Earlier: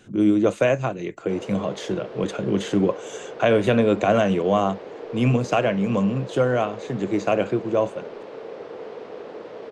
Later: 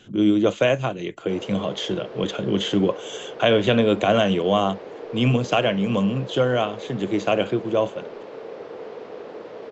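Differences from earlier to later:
speech: add parametric band 3,200 Hz +12 dB 0.34 octaves
master: add linear-phase brick-wall low-pass 7,800 Hz

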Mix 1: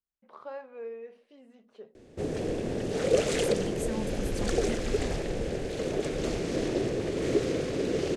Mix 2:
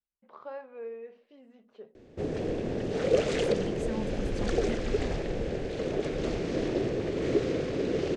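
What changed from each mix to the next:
master: add high-frequency loss of the air 97 metres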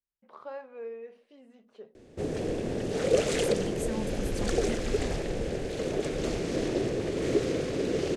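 master: remove high-frequency loss of the air 97 metres

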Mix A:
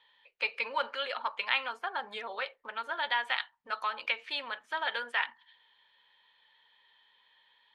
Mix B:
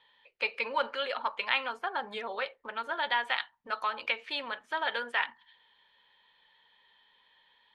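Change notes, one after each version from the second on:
master: add low-shelf EQ 470 Hz +9 dB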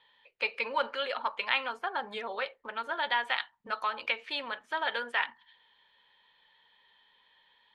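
second voice +8.5 dB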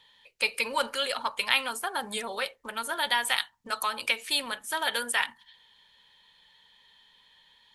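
first voice: add bass and treble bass +12 dB, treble +6 dB
master: remove high-frequency loss of the air 230 metres

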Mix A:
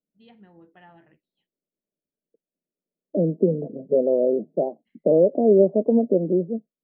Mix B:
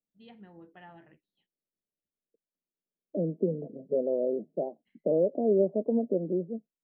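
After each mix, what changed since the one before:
second voice −8.5 dB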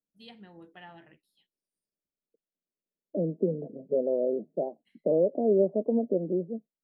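master: remove high-frequency loss of the air 450 metres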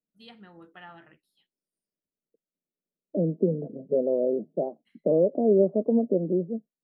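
second voice: add spectral tilt −2 dB per octave
master: add parametric band 1,300 Hz +11 dB 0.47 octaves

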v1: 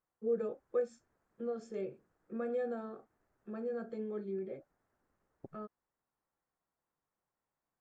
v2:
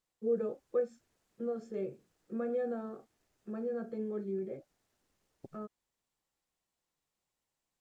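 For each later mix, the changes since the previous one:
first voice: add spectral tilt −1.5 dB per octave
second voice: add high shelf with overshoot 2,200 Hz +13.5 dB, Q 1.5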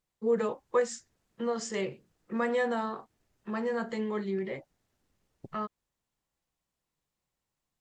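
first voice: remove moving average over 45 samples
master: add bass and treble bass +7 dB, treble −2 dB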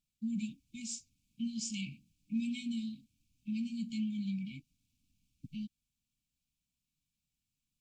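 master: add linear-phase brick-wall band-stop 300–2,200 Hz

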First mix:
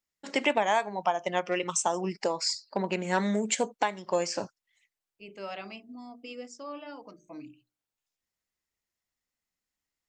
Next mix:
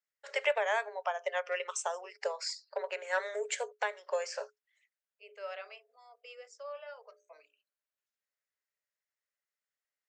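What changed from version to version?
master: add Chebyshev high-pass with heavy ripple 410 Hz, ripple 9 dB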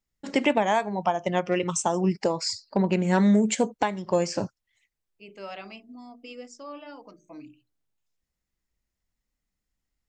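first voice: remove high-pass filter 620 Hz 6 dB per octave
master: remove Chebyshev high-pass with heavy ripple 410 Hz, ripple 9 dB

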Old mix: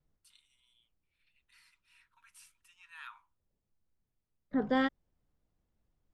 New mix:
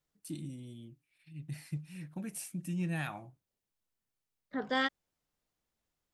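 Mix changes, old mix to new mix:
first voice: remove Chebyshev high-pass with heavy ripple 940 Hz, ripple 6 dB
master: add spectral tilt +3.5 dB per octave

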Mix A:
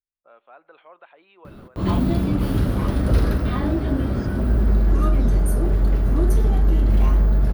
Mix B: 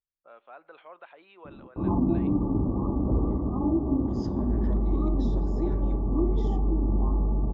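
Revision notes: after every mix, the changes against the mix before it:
background: add Chebyshev low-pass with heavy ripple 1,200 Hz, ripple 9 dB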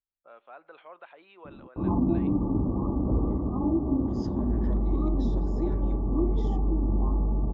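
reverb: off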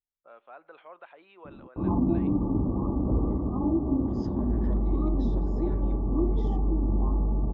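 master: add high-shelf EQ 6,300 Hz −11.5 dB

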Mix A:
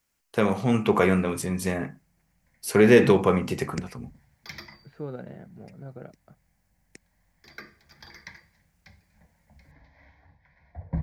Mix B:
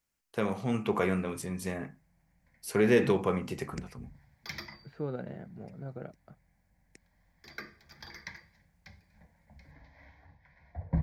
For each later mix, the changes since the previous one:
first voice −8.0 dB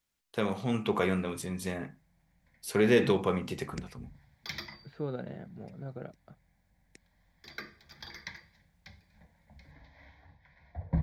master: add parametric band 3,600 Hz +7.5 dB 0.44 octaves

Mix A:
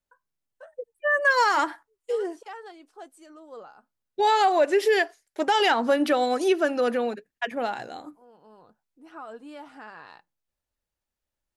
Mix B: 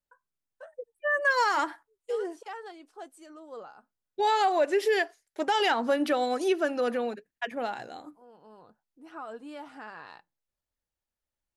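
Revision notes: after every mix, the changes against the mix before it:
second voice −4.0 dB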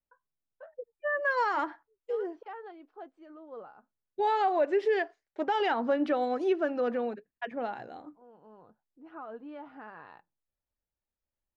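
first voice: add low-pass filter 3,600 Hz 12 dB per octave
master: add head-to-tape spacing loss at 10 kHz 29 dB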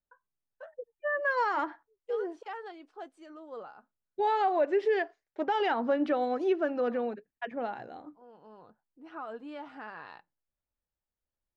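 second voice: add head-to-tape spacing loss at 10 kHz 33 dB
master: remove head-to-tape spacing loss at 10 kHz 29 dB

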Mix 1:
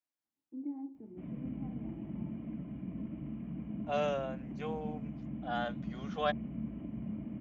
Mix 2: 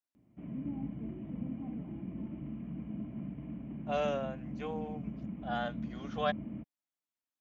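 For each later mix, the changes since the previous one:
background: entry −0.80 s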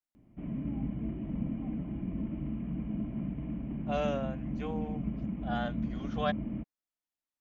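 background +5.0 dB
master: remove high-pass filter 80 Hz 12 dB per octave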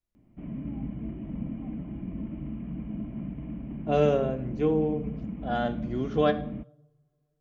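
second voice: remove high-pass filter 650 Hz 24 dB per octave
reverb: on, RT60 0.80 s

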